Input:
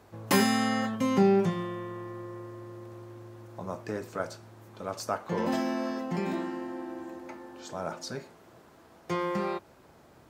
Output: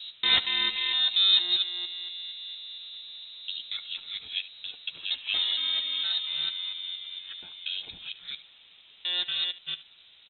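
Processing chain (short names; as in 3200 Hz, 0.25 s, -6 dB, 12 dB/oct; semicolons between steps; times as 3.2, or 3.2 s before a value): local time reversal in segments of 0.232 s; early reflections 11 ms -8 dB, 73 ms -16.5 dB; inverted band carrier 3900 Hz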